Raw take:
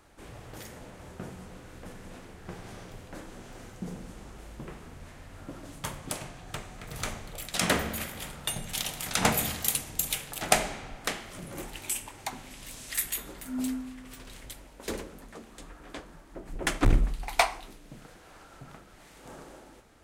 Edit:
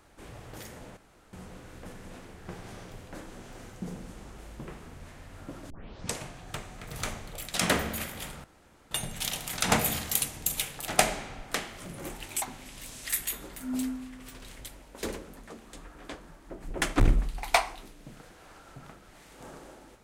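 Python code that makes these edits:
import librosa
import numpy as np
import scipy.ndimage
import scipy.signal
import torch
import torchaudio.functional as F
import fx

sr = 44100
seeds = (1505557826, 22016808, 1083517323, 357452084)

y = fx.edit(x, sr, fx.room_tone_fill(start_s=0.97, length_s=0.36),
    fx.tape_start(start_s=5.7, length_s=0.53),
    fx.insert_room_tone(at_s=8.44, length_s=0.47),
    fx.cut(start_s=11.95, length_s=0.32), tone=tone)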